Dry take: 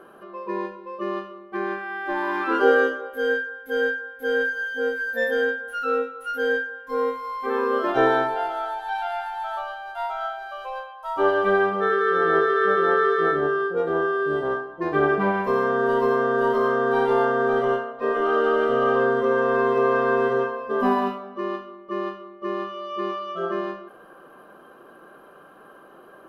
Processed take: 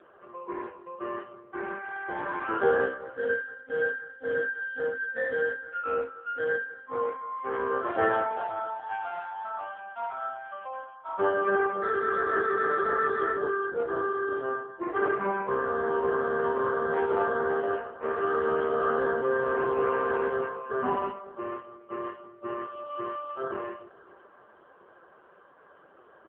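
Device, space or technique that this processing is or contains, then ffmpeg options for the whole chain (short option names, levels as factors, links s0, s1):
satellite phone: -filter_complex "[0:a]asettb=1/sr,asplit=3[s0][s1][s2];[s0]atrim=end=14.834[s3];[s1]atrim=start=14.83:end=16.18,asetpts=PTS-STARTPTS,afade=t=in:d=0.004:c=qsin,afade=t=out:st=1.346:d=0.004:c=qsin,highshelf=f=2400:g=-2.5[s4];[s2]atrim=start=16.176[s5];[s3][s4]acrossfade=d=0.004:c1=hsin:c2=qsin[s6];[s6][s5]acrossfade=d=0.004:c1=qsin:c2=hsin,highpass=320,lowpass=3300,aecho=1:1:545:0.0708,volume=0.668" -ar 8000 -c:a libopencore_amrnb -b:a 5150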